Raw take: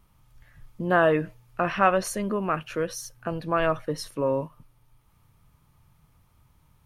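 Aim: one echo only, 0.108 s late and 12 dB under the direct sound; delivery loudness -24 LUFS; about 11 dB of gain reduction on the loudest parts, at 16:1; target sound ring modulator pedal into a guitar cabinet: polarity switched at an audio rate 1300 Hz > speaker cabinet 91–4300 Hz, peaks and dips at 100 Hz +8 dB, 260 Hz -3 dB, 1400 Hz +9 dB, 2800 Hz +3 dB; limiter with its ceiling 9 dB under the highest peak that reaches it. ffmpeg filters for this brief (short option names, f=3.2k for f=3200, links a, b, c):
-af "acompressor=threshold=-25dB:ratio=16,alimiter=limit=-23dB:level=0:latency=1,aecho=1:1:108:0.251,aeval=exprs='val(0)*sgn(sin(2*PI*1300*n/s))':c=same,highpass=91,equalizer=f=100:t=q:w=4:g=8,equalizer=f=260:t=q:w=4:g=-3,equalizer=f=1.4k:t=q:w=4:g=9,equalizer=f=2.8k:t=q:w=4:g=3,lowpass=f=4.3k:w=0.5412,lowpass=f=4.3k:w=1.3066,volume=6.5dB"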